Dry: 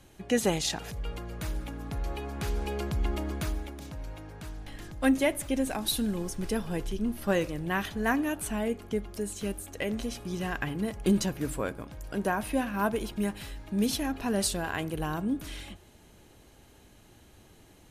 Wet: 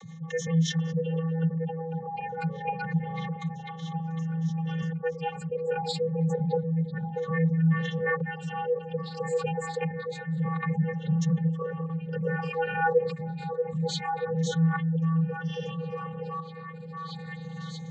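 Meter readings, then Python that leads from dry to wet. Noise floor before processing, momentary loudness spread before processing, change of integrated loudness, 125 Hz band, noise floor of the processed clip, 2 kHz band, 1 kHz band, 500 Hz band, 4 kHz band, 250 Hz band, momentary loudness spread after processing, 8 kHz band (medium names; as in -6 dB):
-56 dBFS, 14 LU, +1.5 dB, +9.5 dB, -41 dBFS, +0.5 dB, +3.5 dB, +2.5 dB, -3.0 dB, 0.0 dB, 10 LU, -8.5 dB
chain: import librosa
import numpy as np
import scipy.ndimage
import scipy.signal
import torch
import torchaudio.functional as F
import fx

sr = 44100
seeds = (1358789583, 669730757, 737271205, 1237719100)

p1 = fx.spec_ripple(x, sr, per_octave=1.2, drift_hz=-0.28, depth_db=18)
p2 = fx.spec_gate(p1, sr, threshold_db=-20, keep='strong')
p3 = fx.rotary_switch(p2, sr, hz=7.0, then_hz=0.9, switch_at_s=3.47)
p4 = fx.add_hum(p3, sr, base_hz=60, snr_db=15)
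p5 = p4 + fx.echo_stepped(p4, sr, ms=634, hz=480.0, octaves=0.7, feedback_pct=70, wet_db=-5.5, dry=0)
p6 = fx.tremolo_shape(p5, sr, shape='saw_up', hz=0.61, depth_pct=80)
p7 = fx.vocoder(p6, sr, bands=32, carrier='square', carrier_hz=163.0)
y = fx.env_flatten(p7, sr, amount_pct=50)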